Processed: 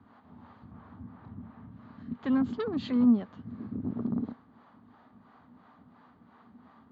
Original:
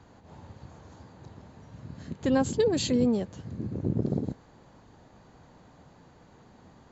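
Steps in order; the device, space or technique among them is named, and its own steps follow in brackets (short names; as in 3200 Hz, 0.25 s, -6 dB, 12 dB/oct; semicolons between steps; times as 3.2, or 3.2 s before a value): 0.71–1.71 tone controls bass +10 dB, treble -12 dB; guitar amplifier with harmonic tremolo (harmonic tremolo 2.9 Hz, depth 70%, crossover 410 Hz; soft clip -22 dBFS, distortion -17 dB; speaker cabinet 110–3400 Hz, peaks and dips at 140 Hz -8 dB, 240 Hz +10 dB, 350 Hz -6 dB, 520 Hz -8 dB, 1200 Hz +9 dB, 2600 Hz -5 dB)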